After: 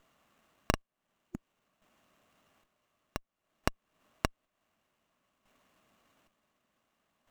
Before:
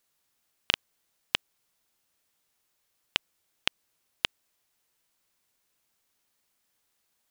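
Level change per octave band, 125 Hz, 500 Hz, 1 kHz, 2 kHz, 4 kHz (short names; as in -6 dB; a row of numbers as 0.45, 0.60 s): +10.5, +5.0, +2.0, -8.5, -16.0 dB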